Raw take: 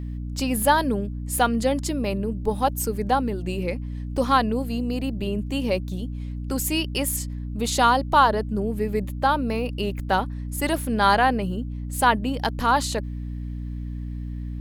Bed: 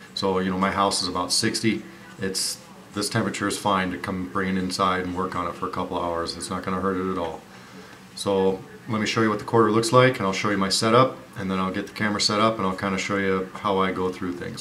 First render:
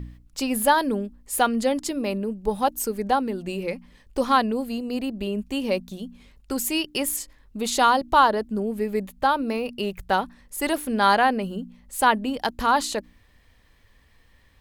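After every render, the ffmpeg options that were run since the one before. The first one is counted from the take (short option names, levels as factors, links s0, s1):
-af "bandreject=f=60:t=h:w=4,bandreject=f=120:t=h:w=4,bandreject=f=180:t=h:w=4,bandreject=f=240:t=h:w=4,bandreject=f=300:t=h:w=4"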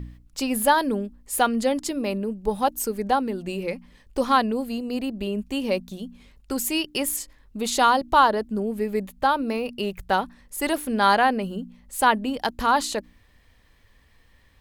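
-af anull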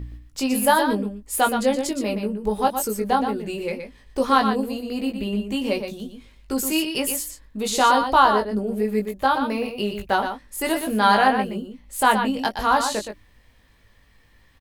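-filter_complex "[0:a]asplit=2[s0][s1];[s1]adelay=19,volume=0.562[s2];[s0][s2]amix=inputs=2:normalize=0,aecho=1:1:120:0.422"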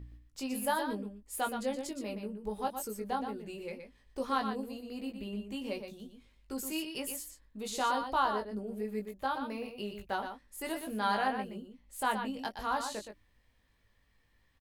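-af "volume=0.2"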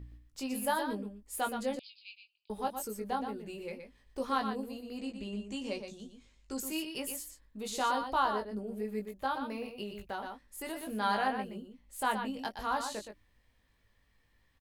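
-filter_complex "[0:a]asettb=1/sr,asplit=3[s0][s1][s2];[s0]atrim=end=1.794[s3];[s1]atrim=start=1.79:end=2.5,asetpts=PTS-STARTPTS,afade=t=in:d=0.004:c=qsin,afade=t=out:st=0.706:d=0.004:c=qsin,asuperpass=centerf=3400:order=20:qfactor=1.3[s4];[s2]atrim=start=2.496[s5];[s3][s4]acrossfade=d=0.004:c1=hsin:c2=qsin[s6];[s6][s5]acrossfade=d=0.004:c1=qsin:c2=hsin,asettb=1/sr,asplit=3[s7][s8][s9];[s7]atrim=end=4.984[s10];[s8]atrim=start=4.98:end=6.6,asetpts=PTS-STARTPTS,afade=t=in:d=0.004:c=qsin,afade=t=out:st=1.616:d=0.004:c=qsin,lowpass=f=7100:t=q:w=3.3[s11];[s9]atrim=start=6.596[s12];[s10][s11]acrossfade=d=0.004:c1=hsin:c2=qsin[s13];[s13][s12]acrossfade=d=0.004:c1=qsin:c2=hsin,asettb=1/sr,asplit=3[s14][s15][s16];[s14]atrim=end=9.834[s17];[s15]atrim=start=9.83:end=10.89,asetpts=PTS-STARTPTS,afade=t=in:d=0.004:c=qsin,afade=t=out:st=1.056:d=0.004:c=qsin,acompressor=threshold=0.0141:ratio=2:attack=3.2:release=140:knee=1:detection=peak[s18];[s16]atrim=start=10.886[s19];[s17][s18]acrossfade=d=0.004:c1=hsin:c2=qsin[s20];[s20][s19]acrossfade=d=0.004:c1=qsin:c2=hsin"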